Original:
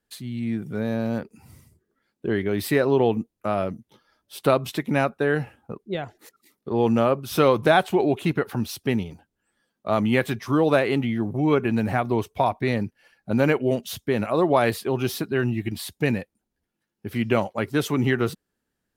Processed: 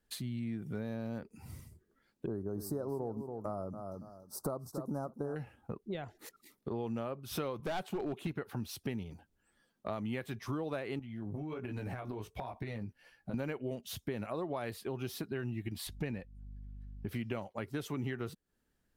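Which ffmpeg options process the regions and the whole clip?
ffmpeg -i in.wav -filter_complex "[0:a]asettb=1/sr,asplit=3[link_01][link_02][link_03];[link_01]atrim=end=2.264[link_04];[link_02]atrim=start=2.26:end=5.36,asetpts=PTS-STARTPTS,afade=type=in:duration=0.004:curve=qsin,afade=type=out:start_time=3.096:duration=0.004:curve=qsin,asuperstop=centerf=2600:order=8:qfactor=0.67,aecho=1:1:282|564:0.237|0.0379,atrim=end_sample=136710[link_05];[link_03]atrim=start=5.356[link_06];[link_04][link_05]acrossfade=duration=0.004:curve1=hsin:curve2=qsin[link_07];[link_07][link_06]acrossfade=duration=0.004:curve1=qsin:curve2=hsin,asettb=1/sr,asplit=3[link_08][link_09][link_10];[link_08]atrim=end=7.604[link_11];[link_09]atrim=start=7.6:end=8.27,asetpts=PTS-STARTPTS,afade=type=in:duration=0.004:curve=qsin,afade=type=out:start_time=0.666:duration=0.004:curve=qsin,lowshelf=frequency=110:width_type=q:width=1.5:gain=-11,asoftclip=type=hard:threshold=-15.5dB[link_12];[link_10]atrim=start=8.266[link_13];[link_11][link_12]acrossfade=duration=0.004:curve1=hsin:curve2=qsin[link_14];[link_14][link_13]acrossfade=duration=0.004:curve1=qsin:curve2=hsin,asettb=1/sr,asplit=3[link_15][link_16][link_17];[link_15]atrim=end=10.994[link_18];[link_16]atrim=start=10.99:end=13.34,asetpts=PTS-STARTPTS,afade=type=in:duration=0.004:curve=qsin,afade=type=out:start_time=2.346:duration=0.004:curve=qsin,flanger=delay=15.5:depth=4.3:speed=1.3,acompressor=threshold=-31dB:ratio=10:attack=3.2:release=140:knee=1:detection=peak[link_19];[link_17]atrim=start=13.336[link_20];[link_18][link_19]acrossfade=duration=0.004:curve1=hsin:curve2=qsin[link_21];[link_21][link_20]acrossfade=duration=0.004:curve1=qsin:curve2=hsin,asettb=1/sr,asplit=3[link_22][link_23][link_24];[link_22]atrim=end=15.874[link_25];[link_23]atrim=start=15.87:end=17.09,asetpts=PTS-STARTPTS,afade=type=in:duration=0.004:curve=qsin,afade=type=out:start_time=1.216:duration=0.004:curve=qsin,highshelf=frequency=7300:gain=-11.5,aeval=exprs='val(0)+0.00316*(sin(2*PI*50*n/s)+sin(2*PI*2*50*n/s)/2+sin(2*PI*3*50*n/s)/3+sin(2*PI*4*50*n/s)/4+sin(2*PI*5*50*n/s)/5)':channel_layout=same[link_26];[link_24]atrim=start=17.086[link_27];[link_25][link_26]acrossfade=duration=0.004:curve1=hsin:curve2=qsin[link_28];[link_28][link_27]acrossfade=duration=0.004:curve1=qsin:curve2=hsin,acompressor=threshold=-37dB:ratio=4,lowshelf=frequency=66:gain=11,volume=-1.5dB" out.wav

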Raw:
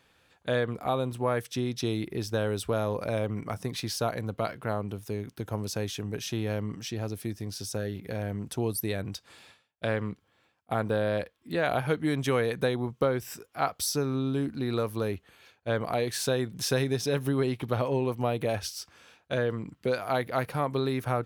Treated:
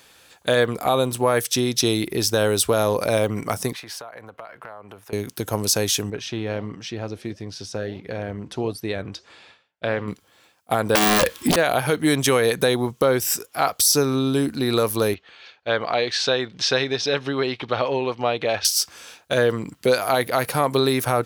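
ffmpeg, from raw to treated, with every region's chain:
ffmpeg -i in.wav -filter_complex "[0:a]asettb=1/sr,asplit=3[link_01][link_02][link_03];[link_01]atrim=end=3.734[link_04];[link_02]atrim=start=3.73:end=5.13,asetpts=PTS-STARTPTS,afade=type=in:duration=0.004:curve=qsin,afade=type=out:start_time=1.396:duration=0.004:curve=qsin,acrossover=split=580 2300:gain=0.2 1 0.0891[link_05][link_06][link_07];[link_05][link_06][link_07]amix=inputs=3:normalize=0,acompressor=threshold=-44dB:ratio=12:attack=3.2:release=140:knee=1:detection=peak[link_08];[link_03]atrim=start=5.126[link_09];[link_04][link_08]acrossfade=duration=0.004:curve1=hsin:curve2=qsin[link_10];[link_10][link_09]acrossfade=duration=0.004:curve1=qsin:curve2=hsin,asettb=1/sr,asplit=3[link_11][link_12][link_13];[link_11]atrim=end=6.104[link_14];[link_12]atrim=start=6.1:end=10.08,asetpts=PTS-STARTPTS,afade=type=in:duration=0.004:curve=qsin,afade=type=out:start_time=3.976:duration=0.004:curve=qsin,lowpass=3000,flanger=delay=1.8:depth=6.6:regen=-89:speed=1.5:shape=sinusoidal[link_15];[link_13]atrim=start=10.076[link_16];[link_14][link_15]acrossfade=duration=0.004:curve1=hsin:curve2=qsin[link_17];[link_17][link_16]acrossfade=duration=0.004:curve1=qsin:curve2=hsin,asettb=1/sr,asplit=3[link_18][link_19][link_20];[link_18]atrim=end=10.954[link_21];[link_19]atrim=start=10.95:end=11.56,asetpts=PTS-STARTPTS,afade=type=in:duration=0.004:curve=qsin,afade=type=out:start_time=0.606:duration=0.004:curve=qsin,equalizer=frequency=680:width_type=o:width=0.26:gain=-11.5,aeval=exprs='0.119*sin(PI/2*7.08*val(0)/0.119)':channel_layout=same[link_22];[link_20]atrim=start=11.556[link_23];[link_21][link_22]acrossfade=duration=0.004:curve1=hsin:curve2=qsin[link_24];[link_24][link_23]acrossfade=duration=0.004:curve1=qsin:curve2=hsin,asettb=1/sr,asplit=3[link_25][link_26][link_27];[link_25]atrim=end=15.144[link_28];[link_26]atrim=start=15.14:end=18.65,asetpts=PTS-STARTPTS,afade=type=in:duration=0.004:curve=qsin,afade=type=out:start_time=3.506:duration=0.004:curve=qsin,lowpass=frequency=4300:width=0.5412,lowpass=frequency=4300:width=1.3066,lowshelf=frequency=440:gain=-9.5,bandreject=frequency=990:width=24[link_29];[link_27]atrim=start=18.646[link_30];[link_28][link_29]acrossfade=duration=0.004:curve1=hsin:curve2=qsin[link_31];[link_31][link_30]acrossfade=duration=0.004:curve1=qsin:curve2=hsin,deesser=0.5,bass=frequency=250:gain=-6,treble=frequency=4000:gain=10,alimiter=level_in=16.5dB:limit=-1dB:release=50:level=0:latency=1,volume=-6dB" out.wav

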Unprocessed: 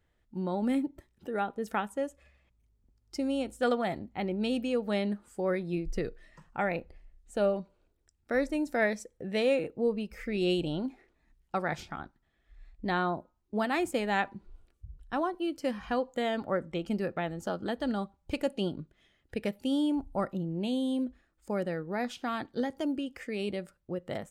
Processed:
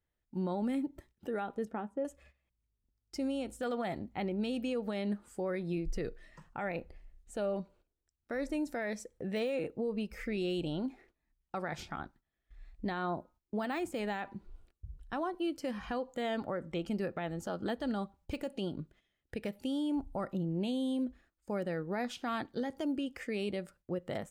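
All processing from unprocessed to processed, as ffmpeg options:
ffmpeg -i in.wav -filter_complex "[0:a]asettb=1/sr,asplit=3[link_01][link_02][link_03];[link_01]atrim=end=1.654[link_04];[link_02]atrim=start=1.65:end=2.05,asetpts=PTS-STARTPTS,afade=type=in:duration=0.004:curve=qsin,afade=type=out:start_time=0.396:duration=0.004:curve=qsin,bandpass=frequency=260:width_type=q:width=0.62,asplit=2[link_05][link_06];[link_06]adelay=13,volume=-12.5dB[link_07];[link_05][link_07]amix=inputs=2:normalize=0,atrim=end_sample=17640[link_08];[link_03]atrim=start=2.046[link_09];[link_04][link_08]acrossfade=duration=0.004:curve1=hsin:curve2=qsin[link_10];[link_10][link_09]acrossfade=duration=0.004:curve1=qsin:curve2=hsin,deesser=1,agate=range=-13dB:threshold=-59dB:ratio=16:detection=peak,alimiter=level_in=3dB:limit=-24dB:level=0:latency=1:release=109,volume=-3dB" out.wav

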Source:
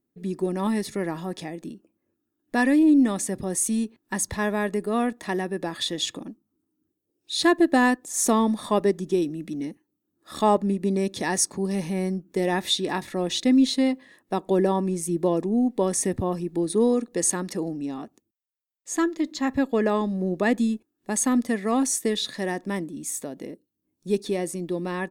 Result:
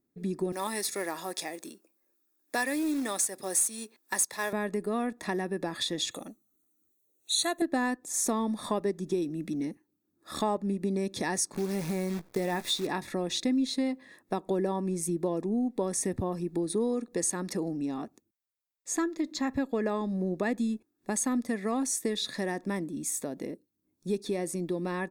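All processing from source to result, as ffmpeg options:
ffmpeg -i in.wav -filter_complex "[0:a]asettb=1/sr,asplit=3[link_01][link_02][link_03];[link_01]atrim=end=0.524[link_04];[link_02]atrim=start=0.52:end=4.53,asetpts=PTS-STARTPTS,afade=type=in:duration=0.004:curve=qsin,afade=type=out:start_time=4.006:duration=0.004:curve=qsin,highpass=460,highshelf=frequency=4400:gain=12,acrusher=bits=4:mode=log:mix=0:aa=0.000001[link_05];[link_03]atrim=start=4.526[link_06];[link_04][link_05]acrossfade=duration=0.004:curve1=hsin:curve2=qsin[link_07];[link_07][link_06]acrossfade=duration=0.004:curve1=qsin:curve2=hsin,asettb=1/sr,asplit=3[link_08][link_09][link_10];[link_08]atrim=end=6.114[link_11];[link_09]atrim=start=6.11:end=7.62,asetpts=PTS-STARTPTS,afade=type=in:duration=0.004:curve=qsin,afade=type=out:start_time=1.506:duration=0.004:curve=qsin,asuperstop=centerf=5100:order=20:qfactor=4.3,bass=frequency=250:gain=-10,treble=frequency=4000:gain=12,aecho=1:1:1.5:0.43,atrim=end_sample=66591[link_12];[link_10]atrim=start=7.616[link_13];[link_11][link_12]acrossfade=duration=0.004:curve1=hsin:curve2=qsin[link_14];[link_14][link_13]acrossfade=duration=0.004:curve1=qsin:curve2=hsin,asettb=1/sr,asplit=3[link_15][link_16][link_17];[link_15]atrim=end=11.544[link_18];[link_16]atrim=start=11.54:end=12.87,asetpts=PTS-STARTPTS,afade=type=in:duration=0.004:curve=qsin,afade=type=out:start_time=1.326:duration=0.004:curve=qsin,acrusher=bits=7:dc=4:mix=0:aa=0.000001,asplit=2[link_19][link_20];[link_20]adelay=18,volume=-12dB[link_21];[link_19][link_21]amix=inputs=2:normalize=0,atrim=end_sample=58653[link_22];[link_17]atrim=start=12.866[link_23];[link_18][link_22]acrossfade=duration=0.004:curve1=hsin:curve2=qsin[link_24];[link_24][link_23]acrossfade=duration=0.004:curve1=qsin:curve2=hsin,bandreject=frequency=3000:width=6.3,acompressor=threshold=-29dB:ratio=2.5" out.wav

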